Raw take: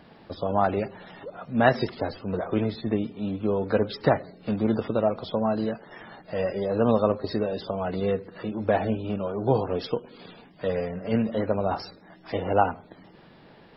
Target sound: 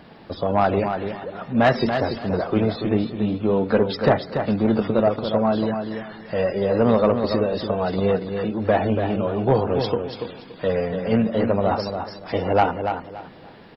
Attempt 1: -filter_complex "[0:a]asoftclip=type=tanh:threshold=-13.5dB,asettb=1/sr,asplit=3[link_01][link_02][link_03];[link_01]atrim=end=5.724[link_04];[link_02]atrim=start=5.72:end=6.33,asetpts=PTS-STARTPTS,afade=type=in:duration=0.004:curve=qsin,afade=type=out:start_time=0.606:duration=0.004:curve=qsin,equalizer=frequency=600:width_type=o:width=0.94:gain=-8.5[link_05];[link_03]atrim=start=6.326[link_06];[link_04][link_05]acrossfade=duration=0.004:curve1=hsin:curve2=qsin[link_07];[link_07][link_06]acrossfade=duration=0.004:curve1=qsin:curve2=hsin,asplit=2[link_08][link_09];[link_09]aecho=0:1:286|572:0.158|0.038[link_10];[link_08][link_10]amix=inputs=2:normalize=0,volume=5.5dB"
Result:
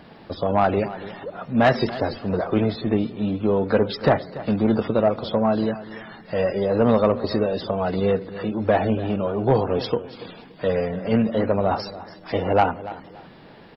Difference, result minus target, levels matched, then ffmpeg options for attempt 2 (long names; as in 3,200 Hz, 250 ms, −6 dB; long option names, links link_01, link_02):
echo-to-direct −9 dB
-filter_complex "[0:a]asoftclip=type=tanh:threshold=-13.5dB,asettb=1/sr,asplit=3[link_01][link_02][link_03];[link_01]atrim=end=5.724[link_04];[link_02]atrim=start=5.72:end=6.33,asetpts=PTS-STARTPTS,afade=type=in:duration=0.004:curve=qsin,afade=type=out:start_time=0.606:duration=0.004:curve=qsin,equalizer=frequency=600:width_type=o:width=0.94:gain=-8.5[link_05];[link_03]atrim=start=6.326[link_06];[link_04][link_05]acrossfade=duration=0.004:curve1=hsin:curve2=qsin[link_07];[link_07][link_06]acrossfade=duration=0.004:curve1=qsin:curve2=hsin,asplit=2[link_08][link_09];[link_09]aecho=0:1:286|572|858:0.447|0.107|0.0257[link_10];[link_08][link_10]amix=inputs=2:normalize=0,volume=5.5dB"